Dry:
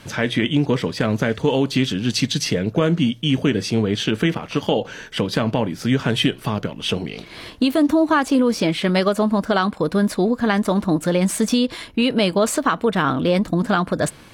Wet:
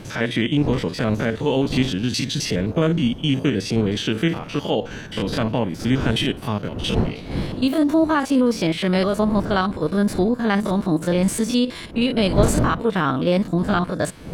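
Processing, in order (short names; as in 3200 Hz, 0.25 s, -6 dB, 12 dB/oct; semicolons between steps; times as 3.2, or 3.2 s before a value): stepped spectrum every 50 ms; wind noise 270 Hz -30 dBFS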